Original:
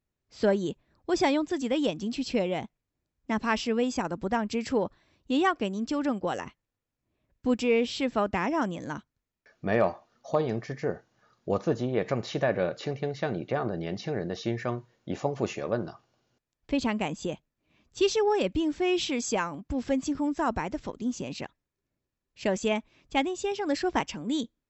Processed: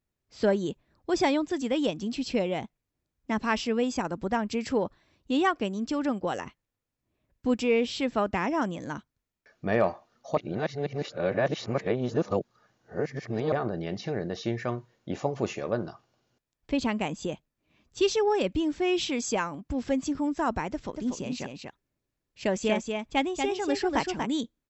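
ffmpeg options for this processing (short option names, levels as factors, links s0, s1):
-filter_complex "[0:a]asplit=3[s0][s1][s2];[s0]afade=t=out:st=20.93:d=0.02[s3];[s1]aecho=1:1:238:0.562,afade=t=in:st=20.93:d=0.02,afade=t=out:st=24.25:d=0.02[s4];[s2]afade=t=in:st=24.25:d=0.02[s5];[s3][s4][s5]amix=inputs=3:normalize=0,asplit=3[s6][s7][s8];[s6]atrim=end=10.372[s9];[s7]atrim=start=10.368:end=13.522,asetpts=PTS-STARTPTS,areverse[s10];[s8]atrim=start=13.518[s11];[s9][s10]acrossfade=d=0.004:c1=hsin:c2=hsin[s12];[s12][s11]acrossfade=d=0.004:c1=hsin:c2=hsin"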